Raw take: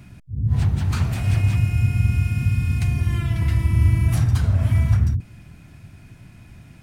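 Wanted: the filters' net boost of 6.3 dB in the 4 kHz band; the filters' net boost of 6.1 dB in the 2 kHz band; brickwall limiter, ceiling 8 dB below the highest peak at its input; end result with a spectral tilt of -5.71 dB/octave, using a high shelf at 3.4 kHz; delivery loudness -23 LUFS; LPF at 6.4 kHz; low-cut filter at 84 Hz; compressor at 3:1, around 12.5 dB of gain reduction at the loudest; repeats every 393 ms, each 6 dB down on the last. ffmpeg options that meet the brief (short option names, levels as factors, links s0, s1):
-af "highpass=84,lowpass=6400,equalizer=f=2000:t=o:g=4.5,highshelf=f=3400:g=5.5,equalizer=f=4000:t=o:g=3.5,acompressor=threshold=0.0224:ratio=3,alimiter=level_in=1.88:limit=0.0631:level=0:latency=1,volume=0.531,aecho=1:1:393|786|1179|1572|1965|2358:0.501|0.251|0.125|0.0626|0.0313|0.0157,volume=5.01"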